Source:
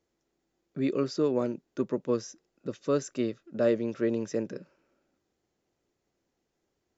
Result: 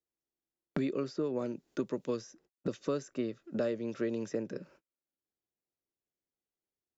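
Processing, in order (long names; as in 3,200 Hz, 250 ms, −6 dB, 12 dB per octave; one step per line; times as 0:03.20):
noise gate −59 dBFS, range −44 dB
multiband upward and downward compressor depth 100%
level −6 dB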